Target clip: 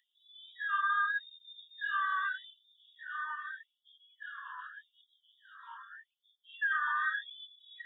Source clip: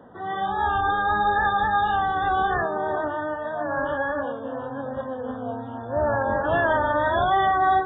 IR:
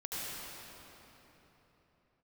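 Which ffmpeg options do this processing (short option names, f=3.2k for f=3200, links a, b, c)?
-filter_complex "[0:a]asplit=2[a][b];[1:a]atrim=start_sample=2205,lowpass=2.3k[c];[b][c]afir=irnorm=-1:irlink=0,volume=-12dB[d];[a][d]amix=inputs=2:normalize=0,acrossover=split=3100[e][f];[f]acompressor=threshold=-55dB:ratio=4:attack=1:release=60[g];[e][g]amix=inputs=2:normalize=0,afftfilt=real='re*gte(b*sr/1024,930*pow(3200/930,0.5+0.5*sin(2*PI*0.83*pts/sr)))':imag='im*gte(b*sr/1024,930*pow(3200/930,0.5+0.5*sin(2*PI*0.83*pts/sr)))':win_size=1024:overlap=0.75,volume=-3.5dB"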